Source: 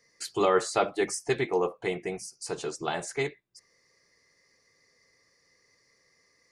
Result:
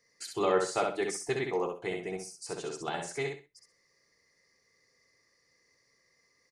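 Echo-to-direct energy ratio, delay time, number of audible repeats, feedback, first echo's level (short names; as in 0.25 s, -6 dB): -4.0 dB, 64 ms, 3, 24%, -4.5 dB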